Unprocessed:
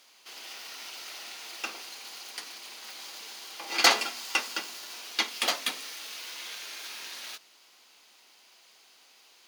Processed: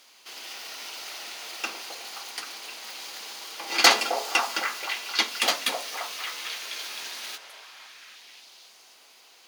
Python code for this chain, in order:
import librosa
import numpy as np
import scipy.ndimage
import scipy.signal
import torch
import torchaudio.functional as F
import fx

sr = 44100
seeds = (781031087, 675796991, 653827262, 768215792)

y = fx.echo_stepped(x, sr, ms=262, hz=580.0, octaves=0.7, feedback_pct=70, wet_db=-2.0)
y = y * librosa.db_to_amplitude(3.5)